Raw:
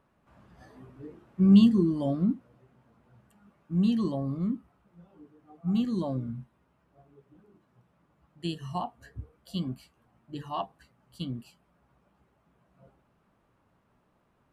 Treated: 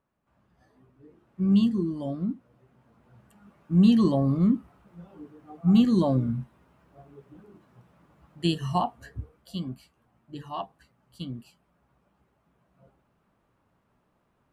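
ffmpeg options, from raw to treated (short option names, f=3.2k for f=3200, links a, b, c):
-af "volume=8dB,afade=t=in:st=1.01:d=0.47:silence=0.473151,afade=t=in:st=2.34:d=1.9:silence=0.266073,afade=t=out:st=8.68:d=0.9:silence=0.354813"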